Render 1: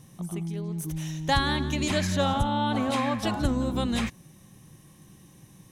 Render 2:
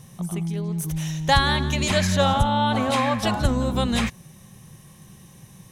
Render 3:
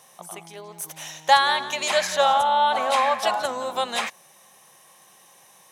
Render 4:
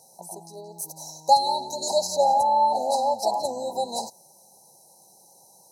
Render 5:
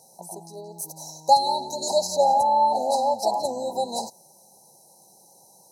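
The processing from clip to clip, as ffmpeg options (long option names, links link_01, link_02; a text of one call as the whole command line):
ffmpeg -i in.wav -af "equalizer=frequency=300:width_type=o:width=0.32:gain=-12,volume=6dB" out.wav
ffmpeg -i in.wav -af "highpass=frequency=690:width_type=q:width=1.6" out.wav
ffmpeg -i in.wav -af "afftfilt=real='re*(1-between(b*sr/4096,1000,3900))':imag='im*(1-between(b*sr/4096,1000,3900))':win_size=4096:overlap=0.75" out.wav
ffmpeg -i in.wav -af "equalizer=frequency=230:width_type=o:width=2.2:gain=3" out.wav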